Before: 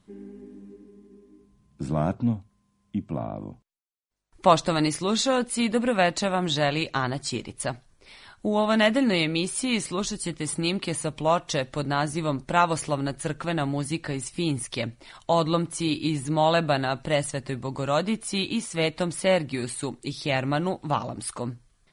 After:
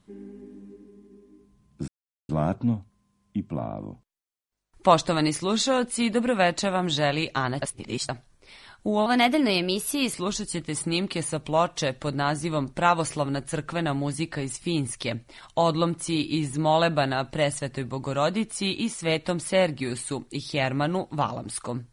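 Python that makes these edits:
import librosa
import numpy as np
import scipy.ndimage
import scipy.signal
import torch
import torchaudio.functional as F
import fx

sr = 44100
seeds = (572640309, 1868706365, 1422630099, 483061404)

y = fx.edit(x, sr, fx.insert_silence(at_s=1.88, length_s=0.41),
    fx.reverse_span(start_s=7.21, length_s=0.47),
    fx.speed_span(start_s=8.65, length_s=1.2, speed=1.12), tone=tone)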